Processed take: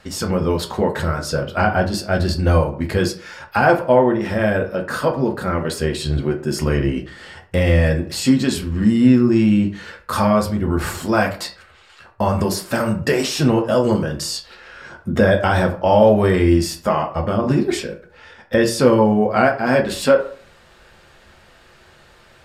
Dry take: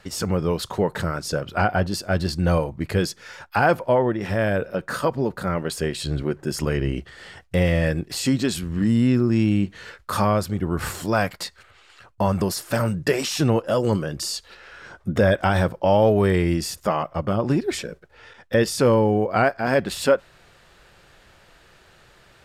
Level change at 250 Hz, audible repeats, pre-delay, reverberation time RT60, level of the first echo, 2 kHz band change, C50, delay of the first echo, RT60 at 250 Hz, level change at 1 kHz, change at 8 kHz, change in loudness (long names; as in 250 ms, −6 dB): +5.5 dB, no echo audible, 3 ms, 0.45 s, no echo audible, +4.0 dB, 11.5 dB, no echo audible, 0.50 s, +4.0 dB, +2.5 dB, +4.5 dB